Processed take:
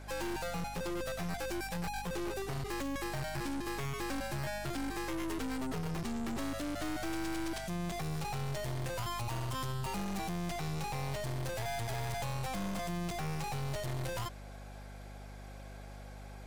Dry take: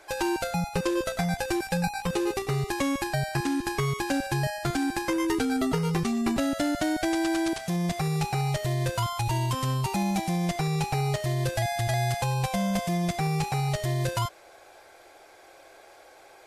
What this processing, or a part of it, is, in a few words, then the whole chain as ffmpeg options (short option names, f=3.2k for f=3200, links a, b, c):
valve amplifier with mains hum: -af "aeval=exprs='(tanh(63.1*val(0)+0.6)-tanh(0.6))/63.1':c=same,aeval=exprs='val(0)+0.00447*(sin(2*PI*50*n/s)+sin(2*PI*2*50*n/s)/2+sin(2*PI*3*50*n/s)/3+sin(2*PI*4*50*n/s)/4+sin(2*PI*5*50*n/s)/5)':c=same"